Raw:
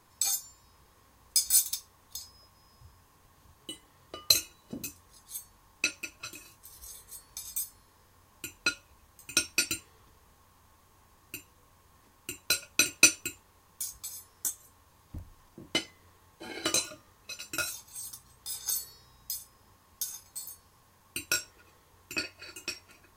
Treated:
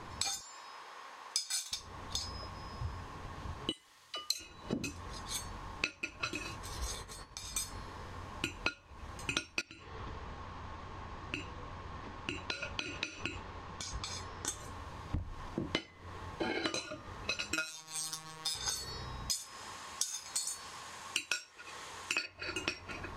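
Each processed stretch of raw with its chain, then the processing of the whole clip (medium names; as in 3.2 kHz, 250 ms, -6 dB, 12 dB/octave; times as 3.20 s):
0.41–1.72 s: high-pass 710 Hz + doubling 33 ms -11 dB
3.72–4.40 s: pre-emphasis filter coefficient 0.97 + phase dispersion lows, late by 49 ms, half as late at 540 Hz
6.95–7.56 s: expander -51 dBFS + compression 10:1, threshold -47 dBFS
9.61–14.48 s: low-pass 5.7 kHz + compression 8:1, threshold -45 dBFS
17.53–18.55 s: tilt EQ +2 dB/octave + upward compressor, threshold -53 dBFS + robot voice 158 Hz
19.31–22.26 s: tilt EQ +4 dB/octave + decimation joined by straight lines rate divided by 2×
whole clip: Bessel low-pass 3.2 kHz, order 2; compression 20:1, threshold -49 dBFS; trim +16.5 dB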